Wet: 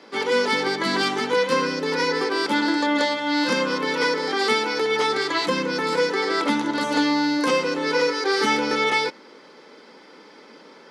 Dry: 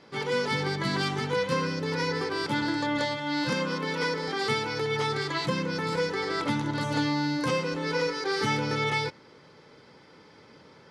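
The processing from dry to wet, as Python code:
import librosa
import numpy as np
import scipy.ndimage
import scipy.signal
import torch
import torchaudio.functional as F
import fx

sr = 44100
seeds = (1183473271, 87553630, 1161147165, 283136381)

y = scipy.signal.sosfilt(scipy.signal.butter(6, 210.0, 'highpass', fs=sr, output='sos'), x)
y = F.gain(torch.from_numpy(y), 7.0).numpy()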